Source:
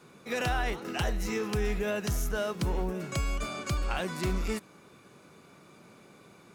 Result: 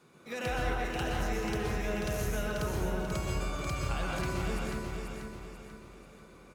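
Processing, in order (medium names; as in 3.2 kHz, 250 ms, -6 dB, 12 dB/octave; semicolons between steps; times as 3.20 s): on a send: feedback delay 488 ms, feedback 42%, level -5 dB; on the sum: plate-style reverb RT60 1.1 s, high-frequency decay 0.45×, pre-delay 110 ms, DRR -2 dB; trim -6.5 dB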